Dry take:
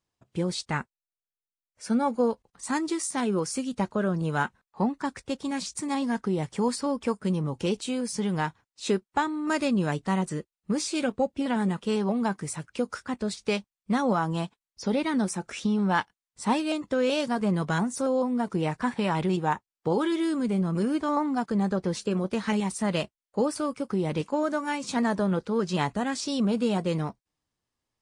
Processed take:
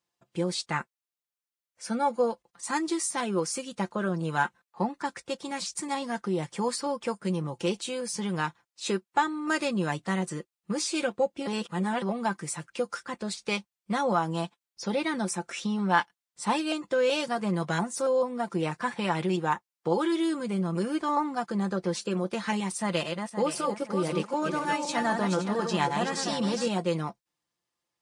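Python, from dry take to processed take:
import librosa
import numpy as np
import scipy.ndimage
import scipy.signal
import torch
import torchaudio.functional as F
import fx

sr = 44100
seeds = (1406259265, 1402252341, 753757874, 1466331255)

y = fx.reverse_delay_fb(x, sr, ms=259, feedback_pct=52, wet_db=-5, at=(22.78, 26.68))
y = fx.edit(y, sr, fx.reverse_span(start_s=11.47, length_s=0.55), tone=tone)
y = scipy.signal.sosfilt(scipy.signal.butter(2, 60.0, 'highpass', fs=sr, output='sos'), y)
y = fx.low_shelf(y, sr, hz=240.0, db=-10.0)
y = y + 0.53 * np.pad(y, (int(5.8 * sr / 1000.0), 0))[:len(y)]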